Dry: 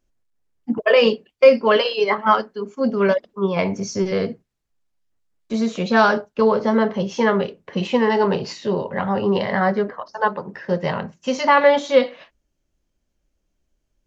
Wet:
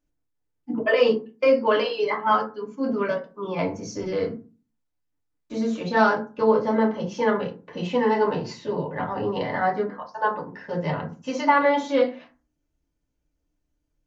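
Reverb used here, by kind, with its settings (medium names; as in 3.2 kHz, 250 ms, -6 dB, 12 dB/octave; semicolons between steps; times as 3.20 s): FDN reverb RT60 0.33 s, low-frequency decay 1.45×, high-frequency decay 0.45×, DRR -2 dB; trim -9 dB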